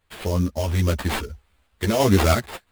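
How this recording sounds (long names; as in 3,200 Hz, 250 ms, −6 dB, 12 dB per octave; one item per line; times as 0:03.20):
a quantiser's noise floor 12 bits, dither triangular
sample-and-hold tremolo 3 Hz, depth 55%
aliases and images of a low sample rate 5,900 Hz, jitter 20%
a shimmering, thickened sound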